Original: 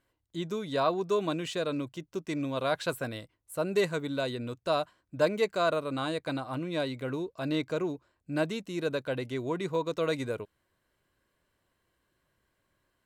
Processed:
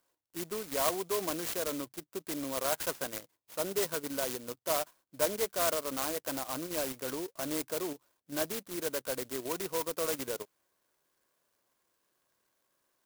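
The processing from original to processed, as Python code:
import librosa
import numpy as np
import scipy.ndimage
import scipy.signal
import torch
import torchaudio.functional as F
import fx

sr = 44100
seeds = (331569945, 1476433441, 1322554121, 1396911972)

p1 = fx.weighting(x, sr, curve='A')
p2 = fx.level_steps(p1, sr, step_db=21)
p3 = p1 + F.gain(torch.from_numpy(p2), 2.5).numpy()
p4 = fx.clock_jitter(p3, sr, seeds[0], jitter_ms=0.13)
y = F.gain(torch.from_numpy(p4), -3.5).numpy()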